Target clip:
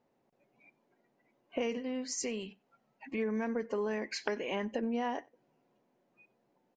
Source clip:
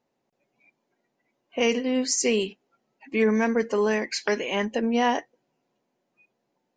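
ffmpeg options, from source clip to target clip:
ffmpeg -i in.wav -filter_complex "[0:a]highshelf=frequency=3100:gain=-11,acompressor=threshold=-35dB:ratio=5,asettb=1/sr,asplit=3[link_01][link_02][link_03];[link_01]atrim=end=1.774[link_04];[link_02]atrim=start=1.77:end=3.18,asetpts=PTS-STARTPTS,afade=type=in:duration=0.004:curve=qsin,afade=type=out:start_time=1.406:duration=0.004:curve=qsin,equalizer=frequency=360:width=1.8:gain=-8[link_05];[link_03]atrim=start=3.176[link_06];[link_04][link_05]acrossfade=duration=0.004:curve1=hsin:curve2=qsin[link_07];[link_07][link_06]acrossfade=duration=0.004:curve1=qsin:curve2=hsin,asplit=2[link_08][link_09];[link_09]adelay=93.29,volume=-26dB,highshelf=frequency=4000:gain=-2.1[link_10];[link_08][link_10]amix=inputs=2:normalize=0,volume=2.5dB" out.wav

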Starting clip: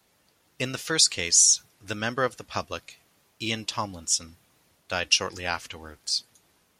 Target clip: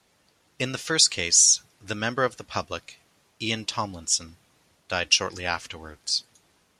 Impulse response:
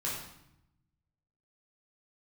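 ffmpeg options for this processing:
-af "lowpass=9900,volume=1.5dB"

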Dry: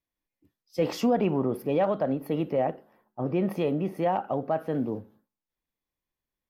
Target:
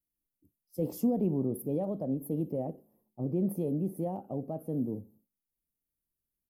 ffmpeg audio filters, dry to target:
ffmpeg -i in.wav -af "firequalizer=gain_entry='entry(200,0);entry(1500,-30);entry(10000,7)':delay=0.05:min_phase=1,volume=-1.5dB" out.wav

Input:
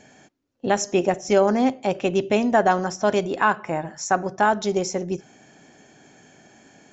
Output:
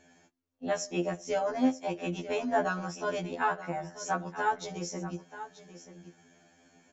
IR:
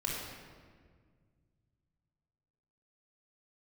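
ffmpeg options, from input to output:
-filter_complex "[0:a]asplit=2[link_01][link_02];[link_02]aecho=0:1:934:0.211[link_03];[link_01][link_03]amix=inputs=2:normalize=0,afftfilt=real='re*2*eq(mod(b,4),0)':imag='im*2*eq(mod(b,4),0)':win_size=2048:overlap=0.75,volume=-7.5dB"

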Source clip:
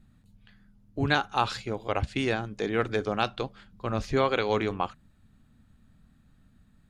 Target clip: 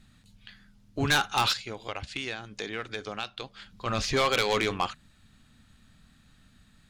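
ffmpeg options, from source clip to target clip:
ffmpeg -i in.wav -filter_complex "[0:a]equalizer=frequency=4500:width=0.32:gain=14,asplit=3[link_01][link_02][link_03];[link_01]afade=type=out:start_time=1.52:duration=0.02[link_04];[link_02]acompressor=threshold=-35dB:ratio=3,afade=type=in:start_time=1.52:duration=0.02,afade=type=out:start_time=3.85:duration=0.02[link_05];[link_03]afade=type=in:start_time=3.85:duration=0.02[link_06];[link_04][link_05][link_06]amix=inputs=3:normalize=0,asoftclip=type=tanh:threshold=-18dB" out.wav

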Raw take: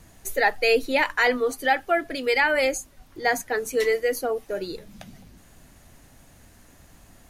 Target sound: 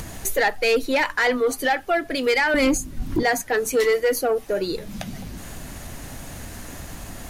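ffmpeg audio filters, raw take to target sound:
ffmpeg -i in.wav -filter_complex "[0:a]asplit=2[link_01][link_02];[link_02]acompressor=mode=upward:threshold=-23dB:ratio=2.5,volume=0dB[link_03];[link_01][link_03]amix=inputs=2:normalize=0,alimiter=limit=-7.5dB:level=0:latency=1:release=313,asettb=1/sr,asplit=3[link_04][link_05][link_06];[link_04]atrim=end=2.544[link_07];[link_05]atrim=start=2.54:end=3.23,asetpts=PTS-STARTPTS,afade=type=in:duration=0.004:curve=qsin,afade=type=out:start_time=0.686:duration=0.004:curve=qsin,lowshelf=frequency=390:width_type=q:width=1.5:gain=11.5[link_08];[link_06]atrim=start=3.226[link_09];[link_07][link_08]acrossfade=duration=0.004:curve1=hsin:curve2=qsin[link_10];[link_10][link_09]acrossfade=duration=0.004:curve1=qsin:curve2=hsin,asoftclip=type=tanh:threshold=-13dB" out.wav

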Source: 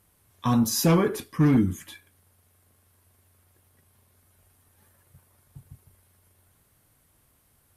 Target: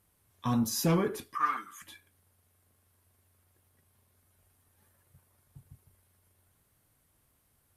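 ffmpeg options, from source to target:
ffmpeg -i in.wav -filter_complex "[0:a]asettb=1/sr,asplit=3[link_01][link_02][link_03];[link_01]atrim=end=1.354[link_04];[link_02]atrim=start=1.35:end=1.82,asetpts=PTS-STARTPTS,afade=type=in:duration=0.004:curve=qsin,afade=type=out:start_time=0.466:duration=0.004:curve=qsin,highpass=frequency=1200:width_type=q:width=9.8[link_05];[link_03]atrim=start=1.816[link_06];[link_04][link_05]acrossfade=duration=0.004:curve1=hsin:curve2=qsin[link_07];[link_07][link_06]acrossfade=duration=0.004:curve1=qsin:curve2=hsin,volume=-6.5dB" out.wav

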